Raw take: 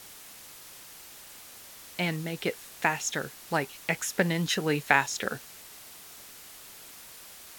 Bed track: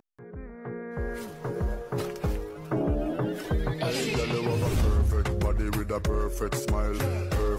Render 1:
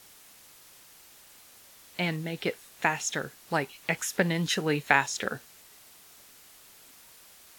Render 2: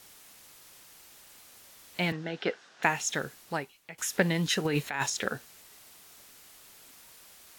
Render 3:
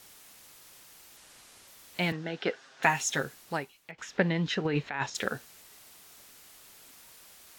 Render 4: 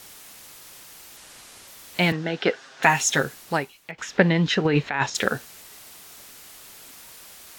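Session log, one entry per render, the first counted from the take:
noise print and reduce 6 dB
2.12–2.83 speaker cabinet 200–5600 Hz, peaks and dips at 740 Hz +4 dB, 1500 Hz +9 dB, 2300 Hz -4 dB, 4100 Hz -3 dB; 3.39–3.98 fade out quadratic, to -18 dB; 4.65–5.1 negative-ratio compressor -29 dBFS
1.17–1.68 delta modulation 64 kbps, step -53 dBFS; 2.53–3.23 comb 7.5 ms, depth 58%; 3.91–5.15 air absorption 180 m
gain +8.5 dB; limiter -2 dBFS, peak gain reduction 2.5 dB

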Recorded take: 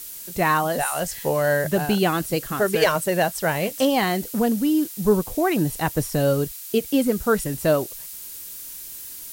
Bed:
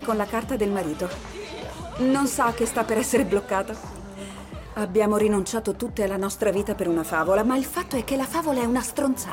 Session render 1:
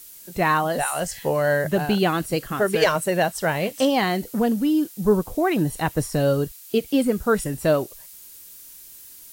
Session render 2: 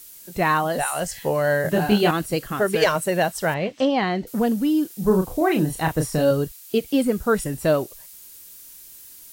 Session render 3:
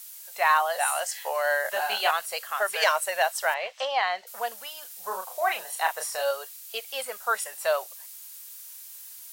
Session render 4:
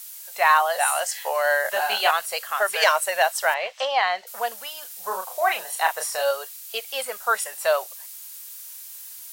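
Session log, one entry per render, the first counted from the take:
noise print and reduce 7 dB
1.62–2.11 doubler 24 ms -2 dB; 3.54–4.27 air absorption 160 m; 4.87–6.31 doubler 32 ms -5.5 dB
inverse Chebyshev high-pass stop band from 330 Hz, stop band 40 dB
gain +4 dB

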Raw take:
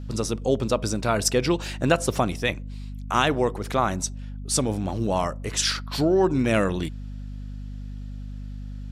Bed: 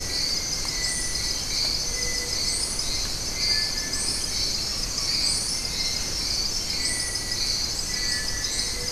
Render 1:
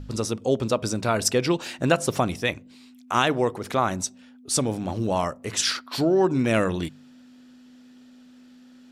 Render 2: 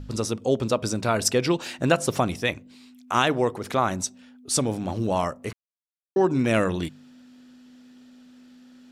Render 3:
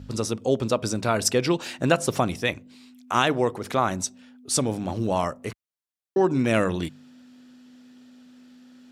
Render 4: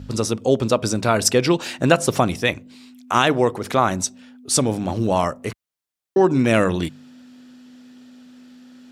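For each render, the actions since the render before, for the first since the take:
de-hum 50 Hz, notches 4
5.53–6.16 mute
HPF 57 Hz
gain +5 dB; limiter -2 dBFS, peak gain reduction 1.5 dB

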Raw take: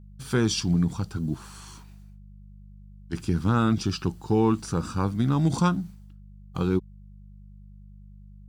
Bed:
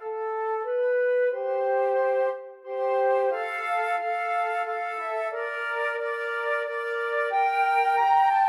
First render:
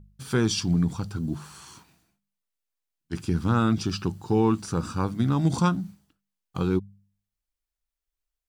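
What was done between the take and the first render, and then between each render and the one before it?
de-hum 50 Hz, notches 4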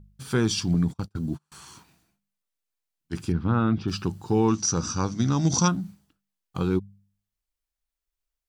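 0.74–1.52 gate -33 dBFS, range -36 dB; 3.32–3.88 air absorption 310 m; 4.48–5.68 synth low-pass 5900 Hz, resonance Q 9.4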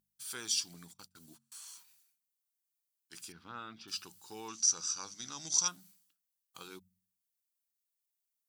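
differentiator; de-hum 45.53 Hz, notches 5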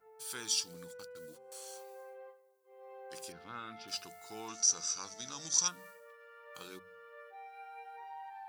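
add bed -27 dB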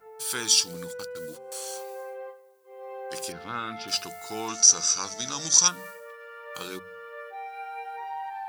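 gain +12 dB; limiter -2 dBFS, peak gain reduction 2 dB

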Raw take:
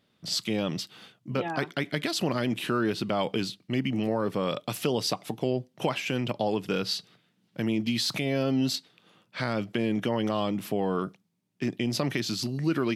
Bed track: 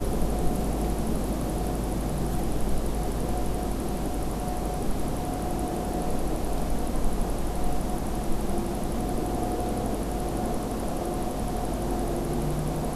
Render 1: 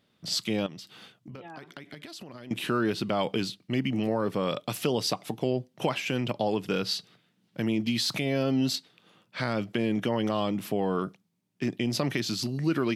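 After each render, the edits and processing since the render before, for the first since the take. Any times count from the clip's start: 0.66–2.51 compressor 12:1, threshold -39 dBFS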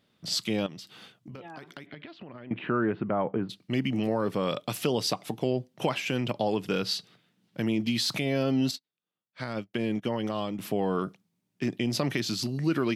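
1.85–3.49 LPF 3700 Hz -> 1400 Hz 24 dB/oct; 8.71–10.59 upward expander 2.5:1, over -47 dBFS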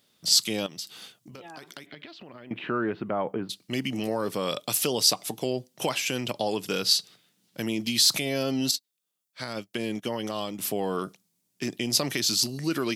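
tone controls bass -5 dB, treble +14 dB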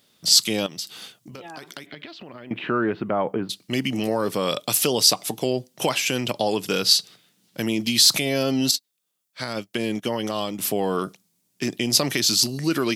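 gain +5 dB; limiter -3 dBFS, peak gain reduction 1 dB

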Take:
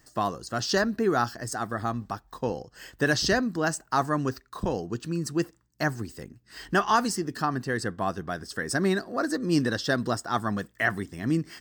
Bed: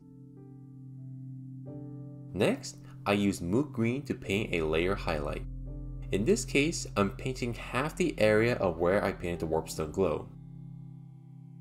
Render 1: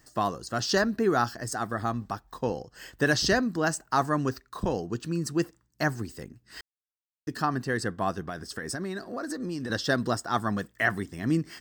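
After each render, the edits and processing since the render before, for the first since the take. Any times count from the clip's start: 6.61–7.27 mute; 8.26–9.7 compressor 12:1, threshold -29 dBFS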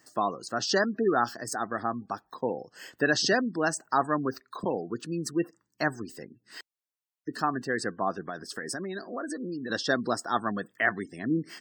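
HPF 210 Hz 12 dB/oct; spectral gate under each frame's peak -25 dB strong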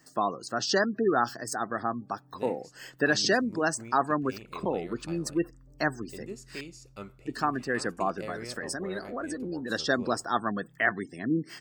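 add bed -15 dB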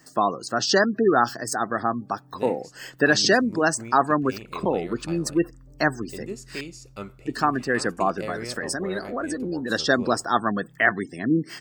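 gain +6 dB

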